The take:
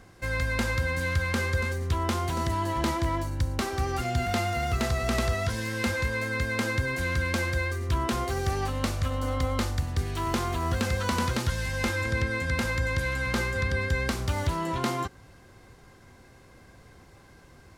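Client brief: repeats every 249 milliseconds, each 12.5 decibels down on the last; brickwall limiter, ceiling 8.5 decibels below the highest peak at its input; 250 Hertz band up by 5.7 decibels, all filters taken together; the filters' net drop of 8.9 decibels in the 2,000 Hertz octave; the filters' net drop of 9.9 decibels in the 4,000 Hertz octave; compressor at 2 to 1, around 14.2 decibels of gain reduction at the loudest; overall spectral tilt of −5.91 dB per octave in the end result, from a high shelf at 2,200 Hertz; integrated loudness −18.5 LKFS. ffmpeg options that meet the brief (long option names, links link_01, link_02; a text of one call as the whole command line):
ffmpeg -i in.wav -af "equalizer=frequency=250:width_type=o:gain=7,equalizer=frequency=2000:width_type=o:gain=-7.5,highshelf=frequency=2200:gain=-6.5,equalizer=frequency=4000:width_type=o:gain=-4,acompressor=threshold=-47dB:ratio=2,alimiter=level_in=11dB:limit=-24dB:level=0:latency=1,volume=-11dB,aecho=1:1:249|498|747:0.237|0.0569|0.0137,volume=26dB" out.wav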